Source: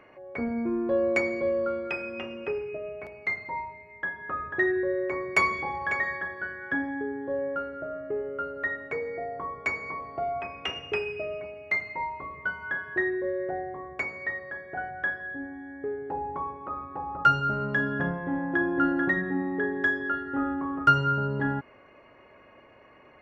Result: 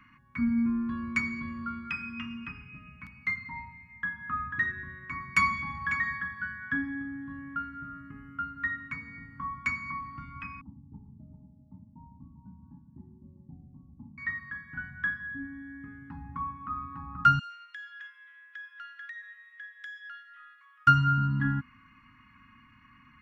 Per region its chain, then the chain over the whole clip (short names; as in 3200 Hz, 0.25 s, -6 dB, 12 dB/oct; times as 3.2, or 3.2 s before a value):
10.61–14.18 rippled Chebyshev low-pass 890 Hz, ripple 6 dB + echo 0.396 s -11 dB
17.39–20.87 inverse Chebyshev high-pass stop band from 360 Hz, stop band 80 dB + compressor 5:1, threshold -38 dBFS
whole clip: elliptic band-stop 250–1100 Hz, stop band 40 dB; tilt shelf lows +3 dB, about 630 Hz; gain +2 dB